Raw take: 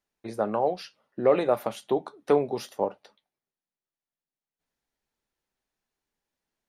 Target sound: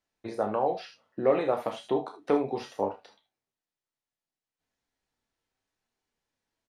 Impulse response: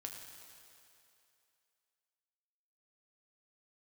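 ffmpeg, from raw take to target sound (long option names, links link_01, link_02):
-filter_complex "[0:a]lowpass=8500,asplit=2[link_01][link_02];[link_02]acompressor=threshold=-29dB:ratio=6,volume=-1.5dB[link_03];[link_01][link_03]amix=inputs=2:normalize=0,asplit=2[link_04][link_05];[link_05]adelay=30,volume=-11dB[link_06];[link_04][link_06]amix=inputs=2:normalize=0[link_07];[1:a]atrim=start_sample=2205,atrim=end_sample=3528[link_08];[link_07][link_08]afir=irnorm=-1:irlink=0,acrossover=split=3700[link_09][link_10];[link_10]acompressor=threshold=-53dB:ratio=4:attack=1:release=60[link_11];[link_09][link_11]amix=inputs=2:normalize=0"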